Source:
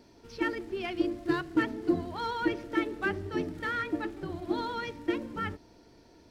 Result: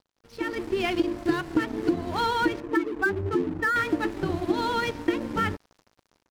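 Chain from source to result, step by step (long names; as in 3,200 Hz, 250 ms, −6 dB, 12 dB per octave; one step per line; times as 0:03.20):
0:02.60–0:03.76: expanding power law on the bin magnitudes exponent 1.9
downward compressor 6 to 1, threshold −32 dBFS, peak gain reduction 11.5 dB
mains hum 50 Hz, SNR 34 dB
dead-zone distortion −51 dBFS
automatic gain control gain up to 12 dB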